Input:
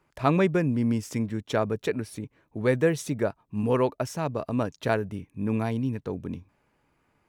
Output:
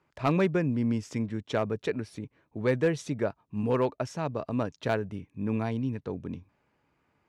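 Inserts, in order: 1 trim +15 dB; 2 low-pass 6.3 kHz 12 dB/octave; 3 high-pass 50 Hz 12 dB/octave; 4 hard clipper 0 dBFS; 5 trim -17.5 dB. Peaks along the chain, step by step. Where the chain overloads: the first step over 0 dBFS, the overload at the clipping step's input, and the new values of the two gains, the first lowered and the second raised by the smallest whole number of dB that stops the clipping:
+6.5 dBFS, +6.5 dBFS, +7.0 dBFS, 0.0 dBFS, -17.5 dBFS; step 1, 7.0 dB; step 1 +8 dB, step 5 -10.5 dB

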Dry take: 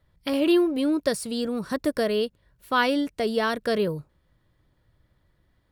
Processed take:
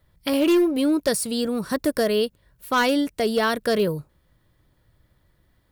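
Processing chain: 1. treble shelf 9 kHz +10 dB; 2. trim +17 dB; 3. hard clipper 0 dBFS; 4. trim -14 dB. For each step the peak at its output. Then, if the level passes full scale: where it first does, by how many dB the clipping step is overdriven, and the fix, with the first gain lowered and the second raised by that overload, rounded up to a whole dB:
-9.5 dBFS, +7.5 dBFS, 0.0 dBFS, -14.0 dBFS; step 2, 7.5 dB; step 2 +9 dB, step 4 -6 dB

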